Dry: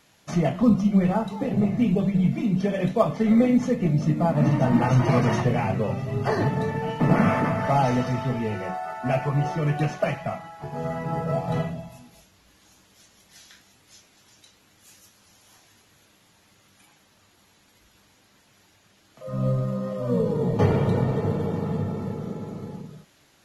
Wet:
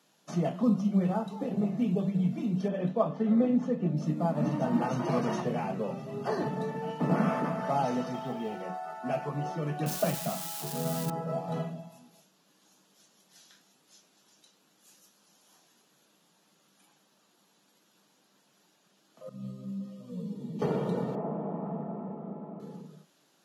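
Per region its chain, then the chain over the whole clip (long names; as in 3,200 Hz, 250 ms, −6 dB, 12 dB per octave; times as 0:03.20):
0:02.68–0:03.97: bass and treble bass +1 dB, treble −13 dB + notch filter 2,200 Hz, Q 9.8
0:08.14–0:08.62: mu-law and A-law mismatch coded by A + hollow resonant body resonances 770/3,200 Hz, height 16 dB, ringing for 85 ms
0:09.86–0:11.10: spike at every zero crossing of −18 dBFS + low-shelf EQ 340 Hz +8.5 dB
0:19.29–0:20.62: high-pass filter 46 Hz + flat-topped bell 840 Hz −15 dB 2.3 octaves + string-ensemble chorus
0:21.15–0:22.60: loudspeaker in its box 180–2,000 Hz, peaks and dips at 200 Hz +3 dB, 470 Hz −6 dB, 680 Hz +9 dB, 970 Hz +3 dB, 1,600 Hz −8 dB + highs frequency-modulated by the lows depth 0.12 ms
whole clip: Chebyshev high-pass filter 160 Hz, order 4; parametric band 2,100 Hz −7.5 dB 0.51 octaves; level −6 dB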